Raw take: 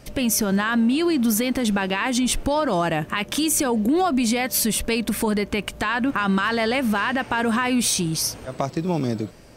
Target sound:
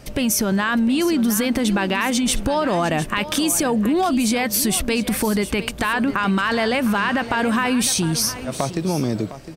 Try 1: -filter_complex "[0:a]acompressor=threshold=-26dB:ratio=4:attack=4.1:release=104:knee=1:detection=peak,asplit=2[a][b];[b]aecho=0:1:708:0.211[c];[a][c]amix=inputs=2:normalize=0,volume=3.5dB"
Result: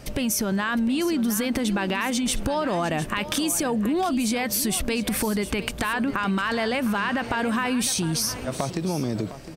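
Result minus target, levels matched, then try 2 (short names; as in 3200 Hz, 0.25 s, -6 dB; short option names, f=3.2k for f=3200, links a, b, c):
compressor: peak gain reduction +5 dB
-filter_complex "[0:a]acompressor=threshold=-19.5dB:ratio=4:attack=4.1:release=104:knee=1:detection=peak,asplit=2[a][b];[b]aecho=0:1:708:0.211[c];[a][c]amix=inputs=2:normalize=0,volume=3.5dB"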